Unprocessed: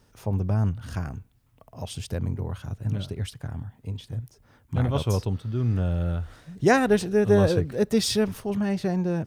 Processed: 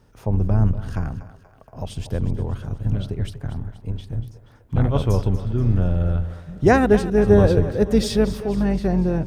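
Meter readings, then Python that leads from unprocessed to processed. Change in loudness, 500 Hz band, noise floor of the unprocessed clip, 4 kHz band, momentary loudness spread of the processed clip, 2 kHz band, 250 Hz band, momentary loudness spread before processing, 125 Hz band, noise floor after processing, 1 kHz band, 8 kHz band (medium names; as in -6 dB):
+4.5 dB, +4.5 dB, -61 dBFS, -1.5 dB, 16 LU, +1.5 dB, +5.0 dB, 16 LU, +5.5 dB, -51 dBFS, +4.0 dB, no reading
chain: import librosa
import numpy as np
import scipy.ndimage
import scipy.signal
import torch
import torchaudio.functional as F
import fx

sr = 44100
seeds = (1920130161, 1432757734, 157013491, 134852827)

p1 = fx.octave_divider(x, sr, octaves=2, level_db=-5.0)
p2 = fx.high_shelf(p1, sr, hz=2300.0, db=-8.5)
p3 = p2 + fx.echo_split(p2, sr, split_hz=400.0, low_ms=82, high_ms=239, feedback_pct=52, wet_db=-13.5, dry=0)
y = p3 * 10.0 ** (4.5 / 20.0)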